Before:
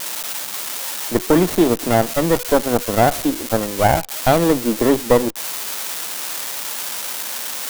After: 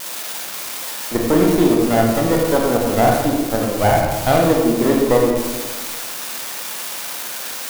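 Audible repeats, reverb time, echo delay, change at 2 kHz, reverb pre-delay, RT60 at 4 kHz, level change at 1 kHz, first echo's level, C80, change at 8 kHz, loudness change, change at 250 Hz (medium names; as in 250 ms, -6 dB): no echo, 1.4 s, no echo, +0.5 dB, 27 ms, 0.70 s, +0.5 dB, no echo, 3.5 dB, -1.5 dB, +1.0 dB, +2.0 dB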